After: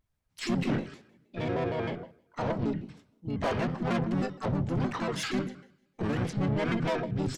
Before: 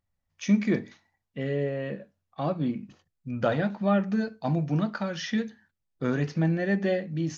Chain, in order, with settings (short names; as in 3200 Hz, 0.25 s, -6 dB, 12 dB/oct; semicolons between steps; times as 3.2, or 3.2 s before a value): two-slope reverb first 0.6 s, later 1.7 s, from -23 dB, DRR 11.5 dB; tube stage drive 28 dB, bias 0.3; harmoniser -12 st -15 dB, -4 st -3 dB, +7 st -5 dB; shaped vibrato square 6.4 Hz, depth 250 cents